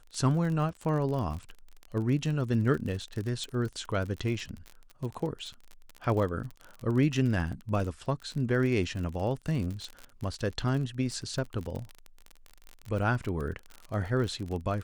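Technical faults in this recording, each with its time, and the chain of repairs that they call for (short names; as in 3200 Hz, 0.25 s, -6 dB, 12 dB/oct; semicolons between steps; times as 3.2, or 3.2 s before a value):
crackle 39/s -34 dBFS
3.44 pop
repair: de-click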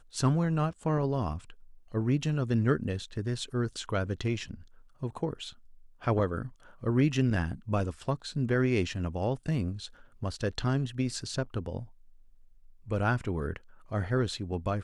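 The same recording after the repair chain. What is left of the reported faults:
none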